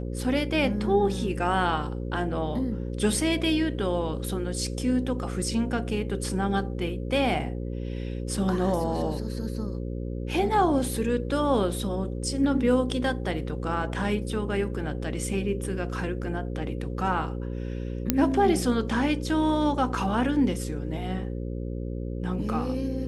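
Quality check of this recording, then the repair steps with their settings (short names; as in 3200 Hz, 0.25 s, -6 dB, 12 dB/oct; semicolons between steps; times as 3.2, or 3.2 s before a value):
buzz 60 Hz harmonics 9 -32 dBFS
18.1 pop -5 dBFS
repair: de-click; de-hum 60 Hz, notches 9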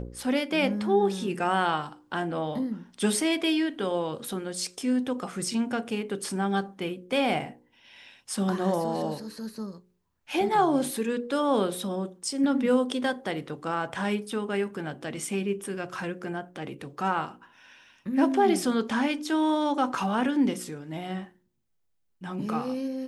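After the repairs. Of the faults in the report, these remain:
none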